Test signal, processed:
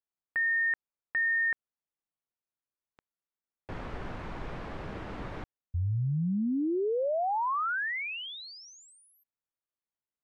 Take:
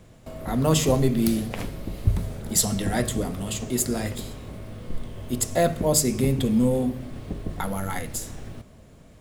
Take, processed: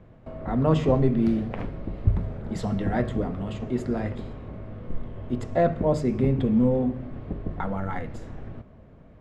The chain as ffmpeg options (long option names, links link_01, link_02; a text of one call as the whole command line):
ffmpeg -i in.wav -af "lowpass=1700" out.wav